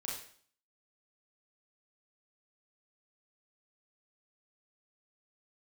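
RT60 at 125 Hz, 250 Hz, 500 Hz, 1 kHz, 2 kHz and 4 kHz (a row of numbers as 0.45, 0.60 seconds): 0.55, 0.60, 0.55, 0.50, 0.50, 0.50 seconds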